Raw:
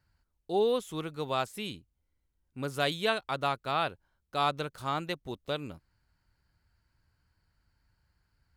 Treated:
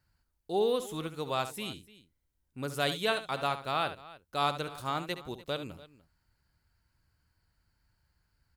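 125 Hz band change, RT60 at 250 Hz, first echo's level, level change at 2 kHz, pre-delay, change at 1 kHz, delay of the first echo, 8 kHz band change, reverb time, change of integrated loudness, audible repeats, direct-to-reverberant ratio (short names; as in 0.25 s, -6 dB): -1.0 dB, none, -11.5 dB, -0.5 dB, none, -1.0 dB, 70 ms, +2.5 dB, none, -1.0 dB, 2, none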